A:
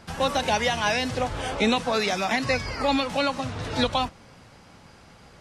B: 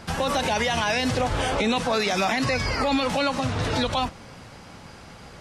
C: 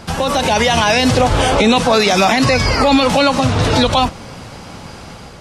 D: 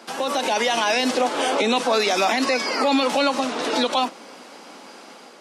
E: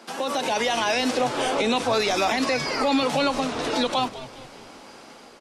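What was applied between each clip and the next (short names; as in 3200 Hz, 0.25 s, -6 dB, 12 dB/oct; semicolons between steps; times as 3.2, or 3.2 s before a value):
limiter -21.5 dBFS, peak gain reduction 11 dB; gain +6.5 dB
bell 1800 Hz -3.5 dB 0.77 oct; AGC gain up to 4 dB; gain +7.5 dB
steep high-pass 240 Hz 36 dB/oct; gain -7 dB
low shelf 130 Hz +7 dB; frequency-shifting echo 0.202 s, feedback 48%, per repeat -120 Hz, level -15 dB; gain -3 dB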